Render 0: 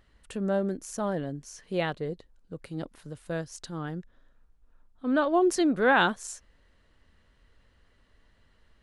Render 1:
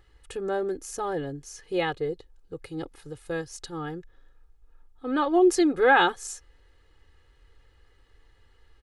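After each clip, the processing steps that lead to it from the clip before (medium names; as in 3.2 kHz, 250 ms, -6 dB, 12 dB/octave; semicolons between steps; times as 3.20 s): comb 2.4 ms, depth 87%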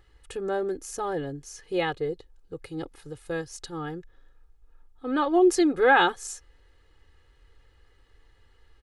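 no audible change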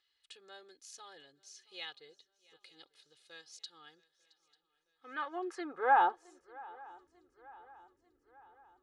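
band-pass sweep 4 kHz -> 290 Hz, 4.43–7.12 s; shuffle delay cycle 893 ms, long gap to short 3:1, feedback 50%, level -23 dB; trim -2.5 dB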